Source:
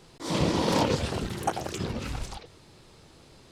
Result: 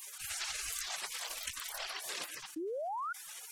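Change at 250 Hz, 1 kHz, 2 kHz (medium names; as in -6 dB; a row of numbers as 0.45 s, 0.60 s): -20.0 dB, -9.5 dB, -3.5 dB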